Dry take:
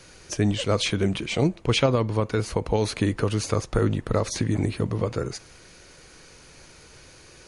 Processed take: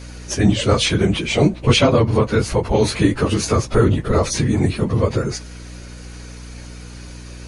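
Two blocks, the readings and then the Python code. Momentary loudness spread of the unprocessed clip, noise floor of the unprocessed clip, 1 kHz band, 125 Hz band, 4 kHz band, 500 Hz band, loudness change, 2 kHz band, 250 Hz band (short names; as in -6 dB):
5 LU, -50 dBFS, +7.5 dB, +7.0 dB, +7.5 dB, +7.0 dB, +7.5 dB, +7.5 dB, +8.0 dB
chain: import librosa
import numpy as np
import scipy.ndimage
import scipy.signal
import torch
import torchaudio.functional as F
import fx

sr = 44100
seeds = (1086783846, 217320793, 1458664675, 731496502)

y = fx.phase_scramble(x, sr, seeds[0], window_ms=50)
y = fx.add_hum(y, sr, base_hz=60, snr_db=17)
y = y * 10.0 ** (7.5 / 20.0)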